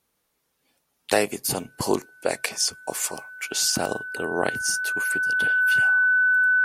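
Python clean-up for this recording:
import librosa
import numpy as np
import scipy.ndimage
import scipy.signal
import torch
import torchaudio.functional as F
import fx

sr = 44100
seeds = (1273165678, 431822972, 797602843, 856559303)

y = fx.notch(x, sr, hz=1500.0, q=30.0)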